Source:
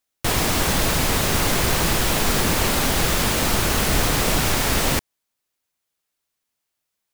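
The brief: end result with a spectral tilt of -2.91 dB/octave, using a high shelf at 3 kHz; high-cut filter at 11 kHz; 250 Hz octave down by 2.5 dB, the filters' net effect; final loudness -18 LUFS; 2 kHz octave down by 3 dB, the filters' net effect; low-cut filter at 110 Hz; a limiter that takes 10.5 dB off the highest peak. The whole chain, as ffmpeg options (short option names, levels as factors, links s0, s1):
-af "highpass=110,lowpass=11000,equalizer=f=250:t=o:g=-3,equalizer=f=2000:t=o:g=-5,highshelf=f=3000:g=3,volume=2.99,alimiter=limit=0.316:level=0:latency=1"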